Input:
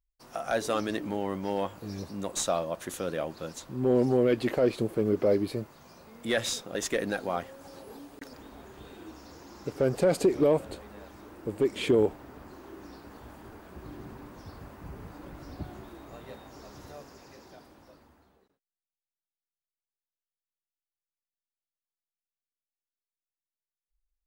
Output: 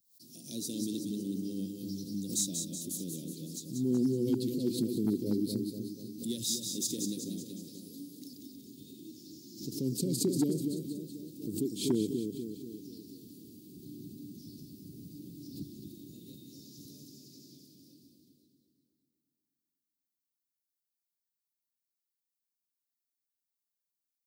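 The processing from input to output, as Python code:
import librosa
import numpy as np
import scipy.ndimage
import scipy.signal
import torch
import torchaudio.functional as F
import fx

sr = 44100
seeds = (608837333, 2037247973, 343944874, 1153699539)

p1 = scipy.signal.sosfilt(scipy.signal.ellip(3, 1.0, 70, [300.0, 4100.0], 'bandstop', fs=sr, output='sos'), x)
p2 = fx.high_shelf(p1, sr, hz=11000.0, db=9.0)
p3 = p2 + fx.echo_split(p2, sr, split_hz=1100.0, low_ms=243, high_ms=186, feedback_pct=52, wet_db=-5.5, dry=0)
p4 = fx.dynamic_eq(p3, sr, hz=1800.0, q=0.71, threshold_db=-54.0, ratio=4.0, max_db=-5)
p5 = np.clip(p4, -10.0 ** (-21.0 / 20.0), 10.0 ** (-21.0 / 20.0))
p6 = scipy.signal.sosfilt(scipy.signal.butter(4, 130.0, 'highpass', fs=sr, output='sos'), p5)
y = fx.pre_swell(p6, sr, db_per_s=110.0)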